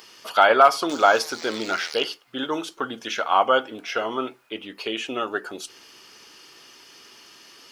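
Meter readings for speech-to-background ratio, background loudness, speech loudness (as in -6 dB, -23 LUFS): 14.0 dB, -36.5 LUFS, -22.5 LUFS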